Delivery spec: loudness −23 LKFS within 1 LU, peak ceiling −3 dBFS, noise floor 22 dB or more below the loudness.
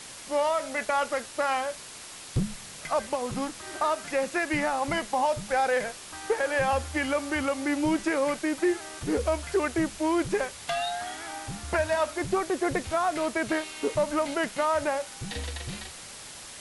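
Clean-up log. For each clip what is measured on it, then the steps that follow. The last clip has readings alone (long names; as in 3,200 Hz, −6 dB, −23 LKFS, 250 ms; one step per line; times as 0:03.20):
background noise floor −44 dBFS; target noise floor −51 dBFS; integrated loudness −28.5 LKFS; sample peak −15.0 dBFS; target loudness −23.0 LKFS
→ broadband denoise 7 dB, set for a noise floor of −44 dBFS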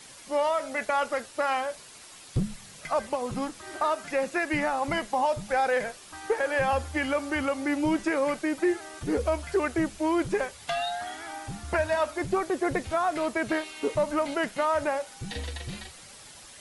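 background noise floor −48 dBFS; target noise floor −51 dBFS
→ broadband denoise 6 dB, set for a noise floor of −48 dBFS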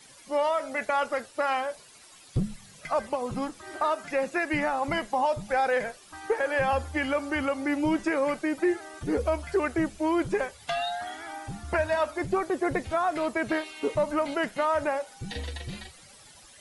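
background noise floor −52 dBFS; integrated loudness −28.5 LKFS; sample peak −15.5 dBFS; target loudness −23.0 LKFS
→ level +5.5 dB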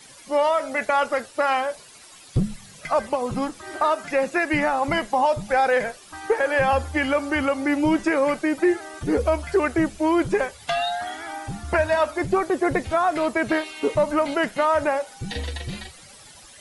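integrated loudness −23.0 LKFS; sample peak −10.0 dBFS; background noise floor −47 dBFS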